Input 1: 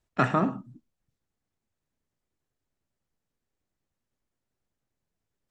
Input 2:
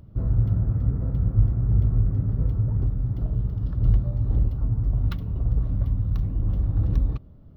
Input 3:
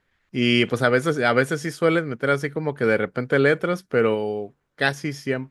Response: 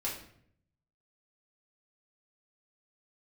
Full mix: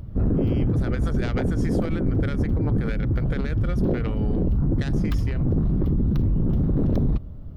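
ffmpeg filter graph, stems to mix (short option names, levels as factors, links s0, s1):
-filter_complex "[0:a]volume=0.106,asplit=2[s0][s1];[1:a]lowshelf=f=71:g=7.5,aeval=exprs='0.355*sin(PI/2*3.55*val(0)/0.355)':c=same,volume=0.422[s2];[2:a]alimiter=limit=0.376:level=0:latency=1:release=209,volume=1.26[s3];[s1]apad=whole_len=242866[s4];[s3][s4]sidechaincompress=threshold=0.00141:ratio=8:attack=6.6:release=419[s5];[s0][s5]amix=inputs=2:normalize=0,aeval=exprs='0.501*(cos(1*acos(clip(val(0)/0.501,-1,1)))-cos(1*PI/2))+0.112*(cos(3*acos(clip(val(0)/0.501,-1,1)))-cos(3*PI/2))':c=same,acompressor=threshold=0.0631:ratio=6,volume=1[s6];[s2][s6]amix=inputs=2:normalize=0,alimiter=limit=0.141:level=0:latency=1:release=84"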